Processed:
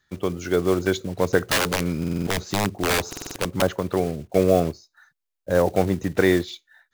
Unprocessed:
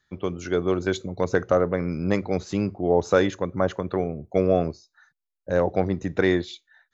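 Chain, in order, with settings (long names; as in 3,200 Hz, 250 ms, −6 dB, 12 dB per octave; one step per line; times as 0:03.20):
one scale factor per block 5 bits
0:01.43–0:03.62: wrap-around overflow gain 17 dB
buffer that repeats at 0:01.99/0:03.08, samples 2,048, times 5
level +2.5 dB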